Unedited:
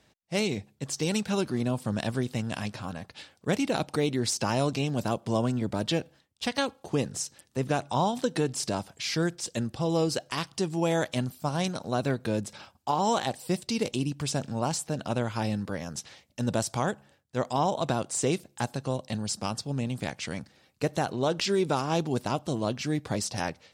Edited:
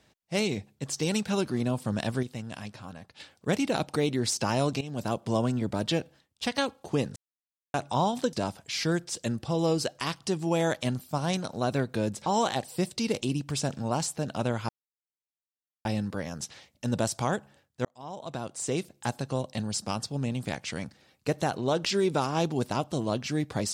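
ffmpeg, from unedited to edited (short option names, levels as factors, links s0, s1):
-filter_complex "[0:a]asplit=10[s0][s1][s2][s3][s4][s5][s6][s7][s8][s9];[s0]atrim=end=2.232[s10];[s1]atrim=start=2.228:end=3.202,asetpts=PTS-STARTPTS,volume=0.473[s11];[s2]atrim=start=3.198:end=4.81,asetpts=PTS-STARTPTS,afade=t=out:st=1.608:d=0.004:c=hsin:silence=0.177828[s12];[s3]atrim=start=4.81:end=7.16,asetpts=PTS-STARTPTS,afade=t=in:d=0.46:c=qsin:silence=0.177828,afade=t=out:st=2.346:d=0.004:c=hsin[s13];[s4]atrim=start=7.16:end=7.74,asetpts=PTS-STARTPTS,volume=0[s14];[s5]atrim=start=7.74:end=8.332,asetpts=PTS-STARTPTS,afade=t=in:d=0.004:c=hsin[s15];[s6]atrim=start=8.638:end=12.572[s16];[s7]atrim=start=12.968:end=15.4,asetpts=PTS-STARTPTS,afade=t=out:st=2.428:d=0.004:c=hsin,apad=pad_dur=1.16[s17];[s8]atrim=start=15.4:end=17.4,asetpts=PTS-STARTPTS,afade=t=in:d=0.004:c=hsin,afade=t=out:st=1.996:d=0.004:c=hsin[s18];[s9]atrim=start=17.4,asetpts=PTS-STARTPTS,afade=t=in:d=1.28[s19];[s10][s11]acrossfade=d=0.004:c1=hsin:c2=hsin[s20];[s12][s13][s14][s15]concat=n=4:v=0:a=1[s21];[s20][s21]acrossfade=d=0.004:c1=hsin:c2=hsin[s22];[s22][s16]acrossfade=d=0.004:c1=hsin:c2=hsin[s23];[s17][s18][s19]concat=n=3:v=0:a=1[s24];[s23][s24]acrossfade=d=0.004:c1=hsin:c2=hsin"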